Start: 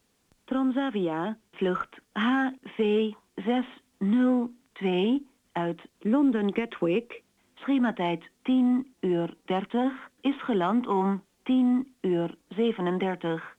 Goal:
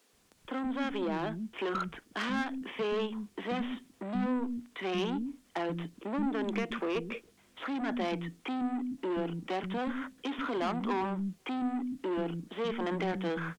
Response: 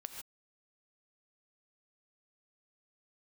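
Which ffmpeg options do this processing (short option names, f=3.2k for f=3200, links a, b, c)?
-filter_complex "[0:a]bandreject=f=870:w=20,asplit=2[a][b];[b]acompressor=threshold=-31dB:ratio=6,volume=-1.5dB[c];[a][c]amix=inputs=2:normalize=0,asoftclip=type=tanh:threshold=-25dB,acrossover=split=250[d][e];[d]adelay=130[f];[f][e]amix=inputs=2:normalize=0,volume=-2dB"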